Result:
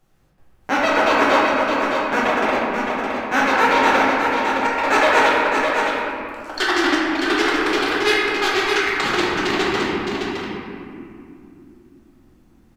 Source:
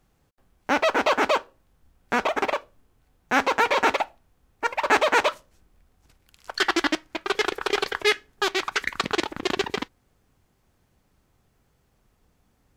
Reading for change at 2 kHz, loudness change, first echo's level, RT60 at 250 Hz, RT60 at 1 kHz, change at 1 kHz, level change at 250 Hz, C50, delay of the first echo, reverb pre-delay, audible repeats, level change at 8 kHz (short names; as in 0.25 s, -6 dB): +7.5 dB, +6.0 dB, -5.5 dB, 4.8 s, 2.3 s, +7.5 dB, +10.0 dB, -3.5 dB, 0.614 s, 6 ms, 1, +4.0 dB